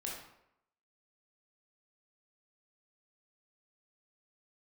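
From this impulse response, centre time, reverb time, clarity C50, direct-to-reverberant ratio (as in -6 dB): 50 ms, 0.80 s, 2.0 dB, -3.5 dB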